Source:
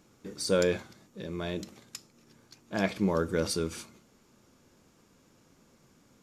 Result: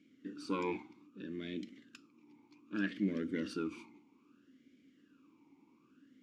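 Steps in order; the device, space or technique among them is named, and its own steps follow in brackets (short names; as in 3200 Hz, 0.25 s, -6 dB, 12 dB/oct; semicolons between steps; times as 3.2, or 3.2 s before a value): talk box (tube stage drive 19 dB, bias 0.55; vowel sweep i-u 0.63 Hz); gain +10 dB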